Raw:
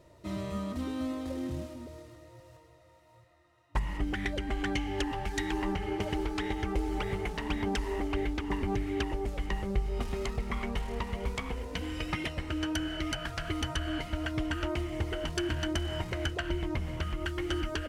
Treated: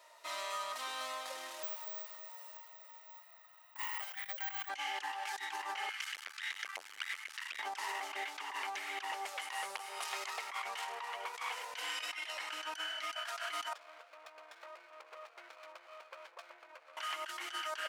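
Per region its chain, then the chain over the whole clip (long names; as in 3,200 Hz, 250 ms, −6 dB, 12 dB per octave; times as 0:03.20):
0:01.63–0:04.69: Butterworth high-pass 510 Hz + bad sample-rate conversion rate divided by 2×, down none, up zero stuff
0:05.89–0:07.59: inverse Chebyshev band-stop filter 240–520 Hz, stop band 70 dB + saturating transformer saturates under 380 Hz
0:09.41–0:10.04: parametric band 9,800 Hz +9 dB 0.45 octaves + hard clipping −27 dBFS
0:10.85–0:11.34: high-shelf EQ 2,100 Hz −7.5 dB + notch filter 2,100 Hz, Q 27
0:13.73–0:16.97: formant resonators in series e + windowed peak hold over 17 samples
whole clip: dynamic equaliser 5,900 Hz, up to +3 dB, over −52 dBFS, Q 0.72; high-pass filter 810 Hz 24 dB per octave; compressor whose output falls as the input rises −44 dBFS, ratio −1; level +3 dB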